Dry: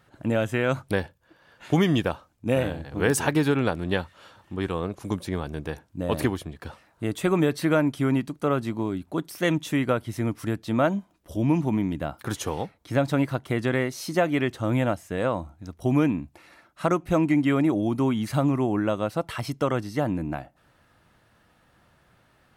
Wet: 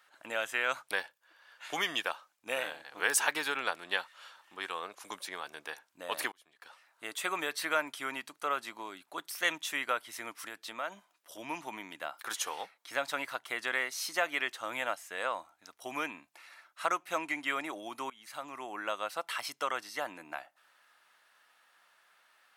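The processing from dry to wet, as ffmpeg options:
-filter_complex "[0:a]asettb=1/sr,asplit=3[a][b][c];[a]atrim=end=10.454[d];[b]atrim=start=10.45:end=11.38,asetpts=PTS-STARTPTS,afade=t=in:d=0.004:c=qsin,afade=t=out:st=0.926:d=0.004:c=qsin,acompressor=threshold=-24dB:ratio=6:attack=3.2:release=140:knee=1:detection=peak[e];[c]atrim=start=11.376[f];[d][e]acrossfade=d=0.004:c1=hsin:c2=qsin[g];[g][f]acrossfade=d=0.004:c1=qsin:c2=hsin,asplit=3[h][i][j];[h]atrim=end=6.32,asetpts=PTS-STARTPTS,afade=t=out:st=6.316:d=0.004:c=hsin[k];[i]atrim=start=6.32:end=18.1,asetpts=PTS-STARTPTS,afade=t=in:d=0.77,afade=t=out:st=11.776:d=0.004:c=hsin:silence=0.0891251[l];[j]atrim=start=18.1,asetpts=PTS-STARTPTS,afade=t=in:d=0.76:silence=0.0891251[m];[k][l][m]concat=n=3:v=0:a=1,highpass=1.1k"

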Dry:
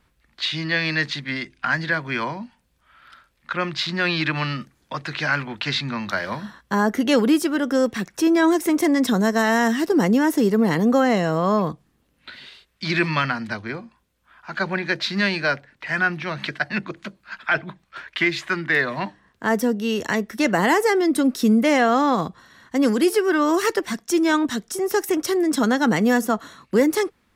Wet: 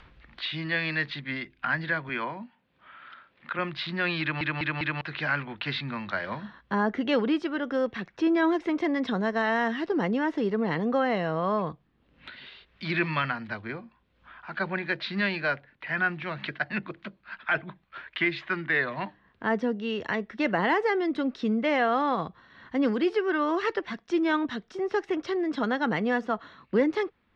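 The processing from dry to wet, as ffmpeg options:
-filter_complex "[0:a]asettb=1/sr,asplit=3[a][b][c];[a]atrim=end=2.094[d];[b]atrim=start=2.09:end=3.59,asetpts=PTS-STARTPTS,afade=t=in:d=0.004:c=qsin,afade=t=out:st=1.496:d=0.004:c=qsin,highpass=170,lowpass=4.1k[e];[c]atrim=start=3.586[f];[d][e]acrossfade=d=0.004:c1=hsin:c2=qsin[g];[g][f]acrossfade=d=0.004:c1=qsin:c2=hsin,asplit=5[h][i][j][k][l];[h]atrim=end=4.412[m];[i]atrim=start=4.208:end=4.412[n];[j]atrim=start=4.208:end=4.412[o];[k]atrim=start=4.208:end=4.412[p];[l]atrim=start=5.008[q];[m][n]acrossfade=d=0.004:c1=hsin:c2=hsin[r];[r][o]acrossfade=d=0.004:c1=hsin:c2=hsin[s];[s][p]acrossfade=d=0.004:c1=hsin:c2=hsin[t];[t][q]acrossfade=d=0.004:c1=hsin:c2=hsin,lowpass=f=3.7k:w=0.5412,lowpass=f=3.7k:w=1.3066,adynamicequalizer=threshold=0.0224:dfrequency=240:dqfactor=1.1:tfrequency=240:tqfactor=1.1:attack=5:release=100:ratio=0.375:range=2.5:mode=cutabove:tftype=bell,acompressor=mode=upward:threshold=-34dB:ratio=2.5,volume=-5.5dB"

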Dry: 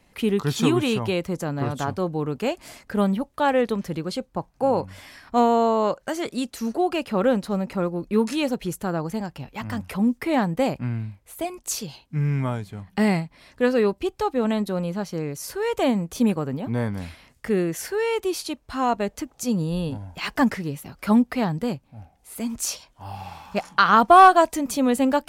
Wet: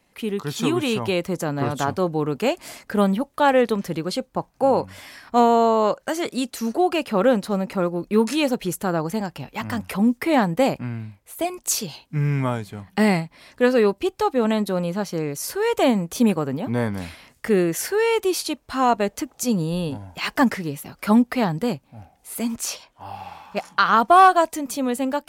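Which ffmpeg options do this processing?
-filter_complex "[0:a]asettb=1/sr,asplit=3[a][b][c];[a]atrim=end=22.564[d];[b]atrim=start=22.56:end=23.57,asetpts=PTS-STARTPTS,afade=t=in:d=0.004:c=qsin,afade=t=out:st=1.006:d=0.004:c=qsin,bass=f=250:g=-4,treble=f=4k:g=-7[e];[c]atrim=start=23.566[f];[d][e]acrossfade=d=0.004:c1=hsin:c2=qsin[g];[g][f]acrossfade=d=0.004:c1=qsin:c2=hsin,asplit=3[h][i][j];[h]atrim=end=10.822[k];[i]atrim=start=10.818:end=11.402,asetpts=PTS-STARTPTS,volume=-3dB[l];[j]atrim=start=11.398[m];[k][l]acrossfade=d=0.004:c1=hsin:c2=hsin[n];[n][m]acrossfade=d=0.004:c1=hsin:c2=hsin,lowshelf=f=110:g=-9.5,dynaudnorm=f=250:g=7:m=8dB,highshelf=f=11k:g=3.5,volume=-3dB"

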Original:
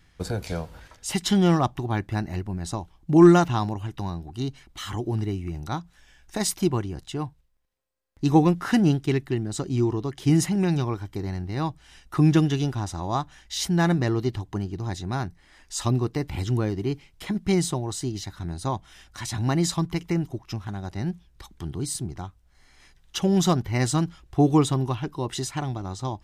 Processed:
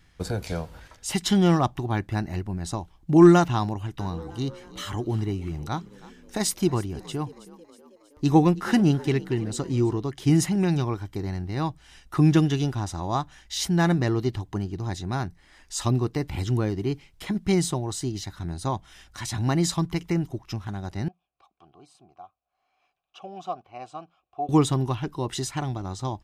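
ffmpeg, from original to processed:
-filter_complex "[0:a]asplit=3[a][b][c];[a]afade=t=out:st=3.99:d=0.02[d];[b]asplit=6[e][f][g][h][i][j];[f]adelay=320,afreqshift=48,volume=-19.5dB[k];[g]adelay=640,afreqshift=96,volume=-24.2dB[l];[h]adelay=960,afreqshift=144,volume=-29dB[m];[i]adelay=1280,afreqshift=192,volume=-33.7dB[n];[j]adelay=1600,afreqshift=240,volume=-38.4dB[o];[e][k][l][m][n][o]amix=inputs=6:normalize=0,afade=t=in:st=3.99:d=0.02,afade=t=out:st=9.98:d=0.02[p];[c]afade=t=in:st=9.98:d=0.02[q];[d][p][q]amix=inputs=3:normalize=0,asettb=1/sr,asplit=3[r][s][t];[r]atrim=end=21.084[u];[s]atrim=start=21.08:end=24.49,asetpts=PTS-STARTPTS,afade=t=in:d=0.004:c=qsin,afade=t=out:st=3.406:d=0.004:c=qsin,asplit=3[v][w][x];[v]bandpass=f=730:t=q:w=8,volume=0dB[y];[w]bandpass=f=1.09k:t=q:w=8,volume=-6dB[z];[x]bandpass=f=2.44k:t=q:w=8,volume=-9dB[aa];[y][z][aa]amix=inputs=3:normalize=0[ab];[t]atrim=start=24.486[ac];[u][ab]acrossfade=d=0.004:c1=hsin:c2=qsin[ad];[ad][ac]acrossfade=d=0.004:c1=qsin:c2=hsin"

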